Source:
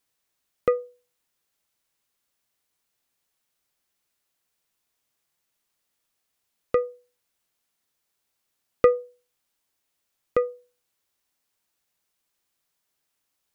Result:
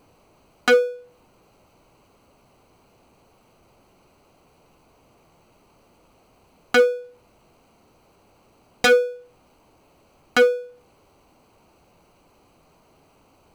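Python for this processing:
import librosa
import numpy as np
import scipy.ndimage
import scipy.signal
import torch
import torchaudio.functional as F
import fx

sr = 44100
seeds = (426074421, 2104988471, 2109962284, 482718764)

y = fx.wiener(x, sr, points=25)
y = fx.power_curve(y, sr, exponent=0.7)
y = 10.0 ** (-18.0 / 20.0) * (np.abs((y / 10.0 ** (-18.0 / 20.0) + 3.0) % 4.0 - 2.0) - 1.0)
y = F.gain(torch.from_numpy(y), 8.5).numpy()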